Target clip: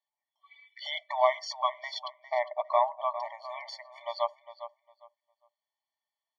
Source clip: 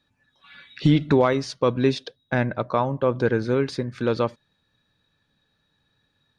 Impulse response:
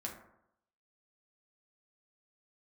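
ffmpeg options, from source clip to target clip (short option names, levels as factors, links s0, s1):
-filter_complex "[0:a]afftdn=nr=14:nf=-41,asplit=2[s0][s1];[s1]adelay=405,lowpass=f=3100:p=1,volume=0.251,asplit=2[s2][s3];[s3]adelay=405,lowpass=f=3100:p=1,volume=0.22,asplit=2[s4][s5];[s5]adelay=405,lowpass=f=3100:p=1,volume=0.22[s6];[s0][s2][s4][s6]amix=inputs=4:normalize=0,afftfilt=real='re*eq(mod(floor(b*sr/1024/590),2),1)':imag='im*eq(mod(floor(b*sr/1024/590),2),1)':win_size=1024:overlap=0.75"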